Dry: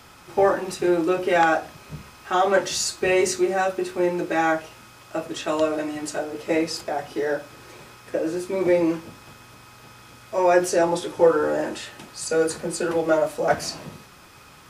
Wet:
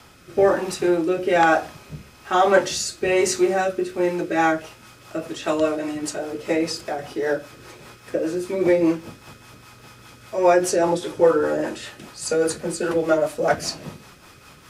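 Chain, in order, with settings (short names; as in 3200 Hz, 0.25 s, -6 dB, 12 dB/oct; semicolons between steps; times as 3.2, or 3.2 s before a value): rotary speaker horn 1.1 Hz, later 5 Hz, at 3.78; gain +3.5 dB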